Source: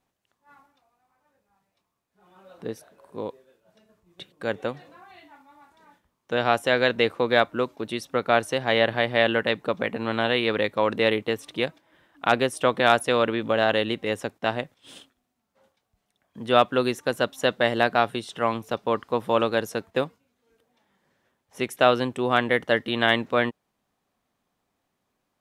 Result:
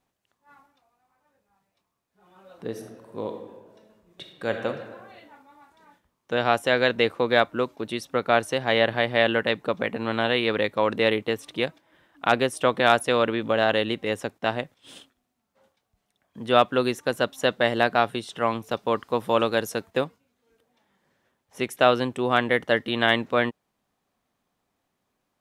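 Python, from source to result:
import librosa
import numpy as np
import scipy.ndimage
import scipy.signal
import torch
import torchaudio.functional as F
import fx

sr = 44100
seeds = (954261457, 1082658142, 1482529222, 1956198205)

y = fx.reverb_throw(x, sr, start_s=2.66, length_s=2.01, rt60_s=1.3, drr_db=4.0)
y = fx.high_shelf(y, sr, hz=4500.0, db=5.0, at=(18.71, 19.97))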